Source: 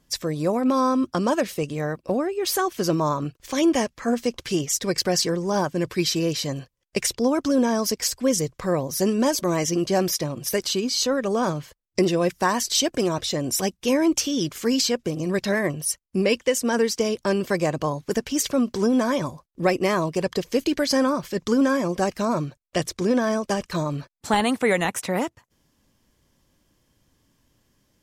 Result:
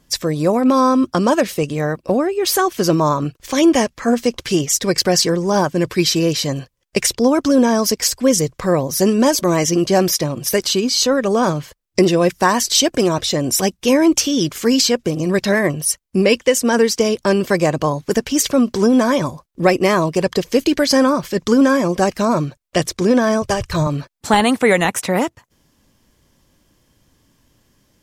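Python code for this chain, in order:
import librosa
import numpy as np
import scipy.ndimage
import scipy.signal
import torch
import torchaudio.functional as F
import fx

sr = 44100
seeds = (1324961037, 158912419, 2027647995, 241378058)

y = fx.low_shelf_res(x, sr, hz=150.0, db=10.5, q=3.0, at=(23.42, 23.87))
y = y * 10.0 ** (7.0 / 20.0)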